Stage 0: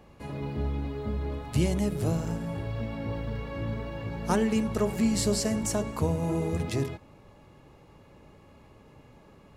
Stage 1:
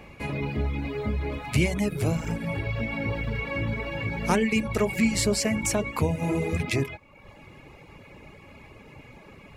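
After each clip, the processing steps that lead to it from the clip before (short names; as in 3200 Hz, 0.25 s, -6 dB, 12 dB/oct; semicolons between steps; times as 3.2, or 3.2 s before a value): reverb removal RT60 0.72 s; bell 2300 Hz +13.5 dB 0.43 oct; in parallel at +2 dB: compressor, threshold -34 dBFS, peak gain reduction 13.5 dB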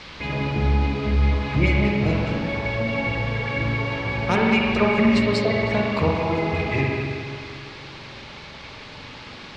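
LFO low-pass sine 4.9 Hz 790–4100 Hz; spring tank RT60 2.4 s, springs 44/57 ms, chirp 20 ms, DRR -2.5 dB; band noise 840–4500 Hz -43 dBFS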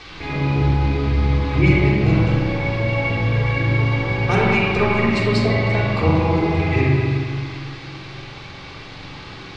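shoebox room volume 2700 m³, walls furnished, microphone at 3.6 m; gain -1 dB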